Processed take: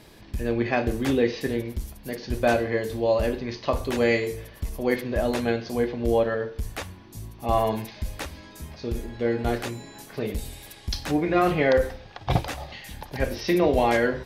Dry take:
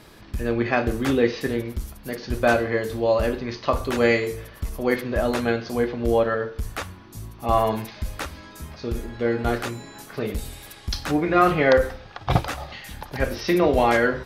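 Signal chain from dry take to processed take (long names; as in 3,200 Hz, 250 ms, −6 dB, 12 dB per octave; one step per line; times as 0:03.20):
parametric band 1,300 Hz −7.5 dB 0.48 octaves
boost into a limiter +7 dB
level −8.5 dB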